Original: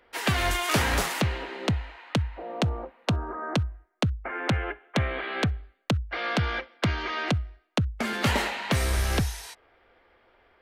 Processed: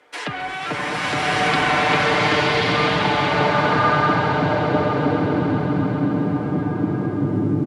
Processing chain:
gliding playback speed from 102% → 175%
high-pass filter 200 Hz 12 dB per octave
treble cut that deepens with the level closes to 2,200 Hz, closed at −23 dBFS
comb filter 6.7 ms, depth 59%
in parallel at −1 dB: compressor whose output falls as the input rises −35 dBFS, ratio −1
on the sum: low-pass filter sweep 10,000 Hz → 280 Hz, 0:00.72–0:04.36
bit reduction 10 bits
high-frequency loss of the air 61 metres
on a send: echo that builds up and dies away 133 ms, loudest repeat 5, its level −14 dB
on the sum: frozen spectrum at 0:05.29, 0.81 s
slow-attack reverb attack 1,250 ms, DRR −9.5 dB
level −3 dB

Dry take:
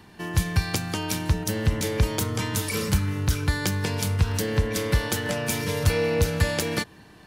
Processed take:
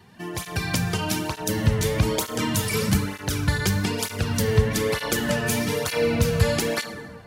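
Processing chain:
automatic gain control gain up to 5 dB
dense smooth reverb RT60 1.7 s, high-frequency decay 0.45×, DRR 6.5 dB
through-zero flanger with one copy inverted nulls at 1.1 Hz, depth 3.8 ms

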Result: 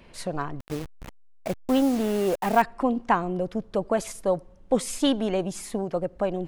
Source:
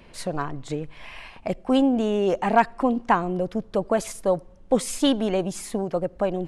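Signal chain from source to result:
0:00.60–0:02.62: hold until the input has moved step −30 dBFS
level −2 dB

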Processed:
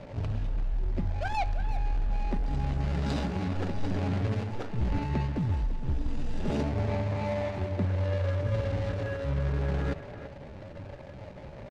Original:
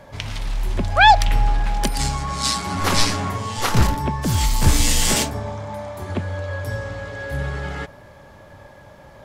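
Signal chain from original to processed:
running median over 41 samples
low-pass filter 5,100 Hz 12 dB per octave
high-shelf EQ 2,800 Hz +2.5 dB
reversed playback
downward compressor 16 to 1, threshold −28 dBFS, peak gain reduction 19.5 dB
reversed playback
tempo change 0.79×
far-end echo of a speakerphone 340 ms, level −10 dB
level +3.5 dB

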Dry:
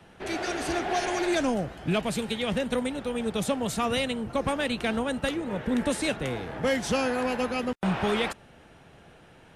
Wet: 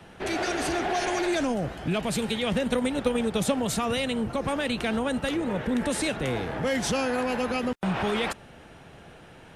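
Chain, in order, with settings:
brickwall limiter −23.5 dBFS, peak gain reduction 7 dB
0:02.51–0:03.63: transient designer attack +8 dB, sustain 0 dB
level +4.5 dB

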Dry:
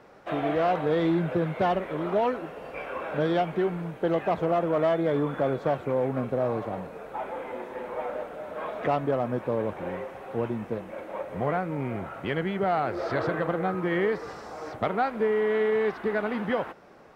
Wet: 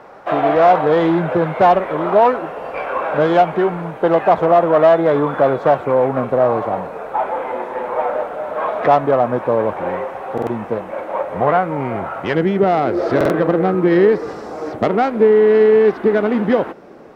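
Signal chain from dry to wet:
phase distortion by the signal itself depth 0.084 ms
parametric band 890 Hz +10 dB 2 octaves, from 0:12.35 320 Hz
buffer that repeats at 0:10.33/0:13.16, samples 2,048, times 2
level +5.5 dB

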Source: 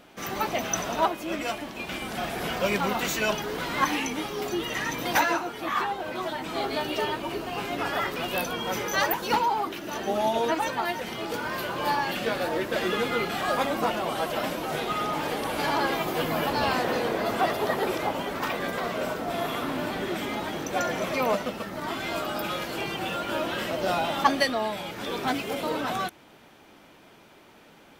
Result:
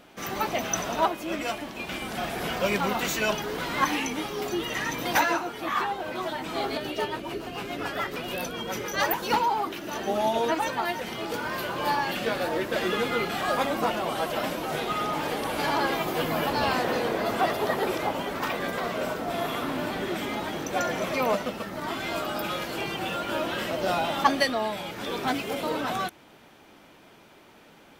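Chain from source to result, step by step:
0:06.77–0:09.00: rotating-speaker cabinet horn 7 Hz

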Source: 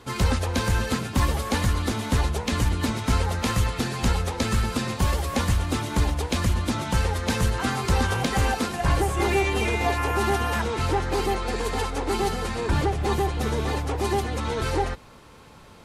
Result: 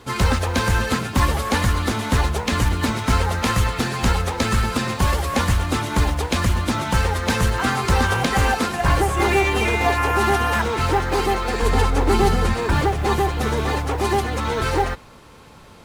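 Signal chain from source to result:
dynamic equaliser 1,400 Hz, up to +4 dB, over −38 dBFS, Q 0.71
in parallel at −7 dB: floating-point word with a short mantissa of 2 bits
0:11.62–0:12.54: on the sum: low-shelf EQ 280 Hz +9.5 dB

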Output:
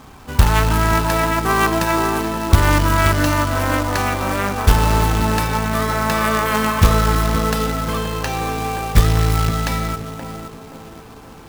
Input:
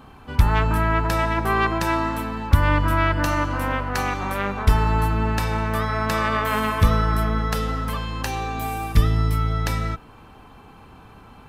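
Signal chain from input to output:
feedback echo with a band-pass in the loop 525 ms, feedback 57%, band-pass 400 Hz, level −3.5 dB
low-pass that shuts in the quiet parts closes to 2,400 Hz, open at −17.5 dBFS
log-companded quantiser 4 bits
level +3.5 dB

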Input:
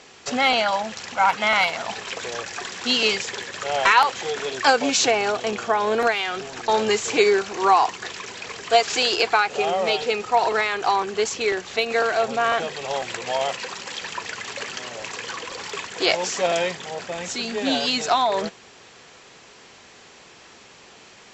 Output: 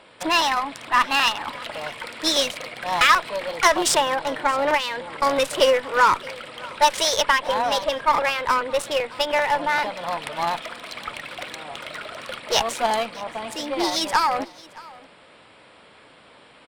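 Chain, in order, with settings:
adaptive Wiener filter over 9 samples
speed change +28%
harmonic generator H 5 −25 dB, 7 −28 dB, 8 −24 dB, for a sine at −4 dBFS
single-tap delay 621 ms −22 dB

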